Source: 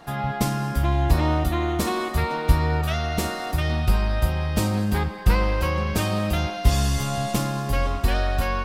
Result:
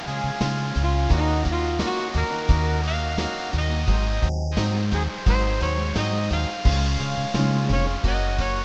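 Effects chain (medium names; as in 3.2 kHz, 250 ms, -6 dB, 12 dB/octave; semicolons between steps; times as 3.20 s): one-bit delta coder 32 kbps, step -26.5 dBFS; 4.29–4.52 s: spectral selection erased 910–4700 Hz; 7.39–7.88 s: peaking EQ 210 Hz +8.5 dB 1.8 oct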